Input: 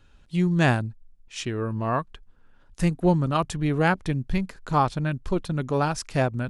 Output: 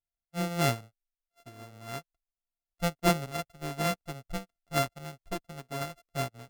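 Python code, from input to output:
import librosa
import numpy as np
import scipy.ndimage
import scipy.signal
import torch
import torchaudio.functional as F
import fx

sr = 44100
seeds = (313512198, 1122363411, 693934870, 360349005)

y = np.r_[np.sort(x[:len(x) // 64 * 64].reshape(-1, 64), axis=1).ravel(), x[len(x) // 64 * 64:]]
y = fx.upward_expand(y, sr, threshold_db=-42.0, expansion=2.5)
y = y * librosa.db_to_amplitude(-3.0)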